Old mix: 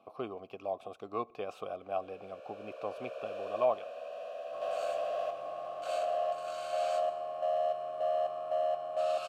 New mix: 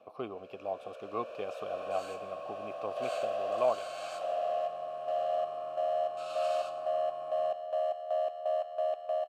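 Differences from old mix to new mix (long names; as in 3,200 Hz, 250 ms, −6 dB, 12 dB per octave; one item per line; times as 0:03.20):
first sound: entry −1.65 s
second sound: entry −2.80 s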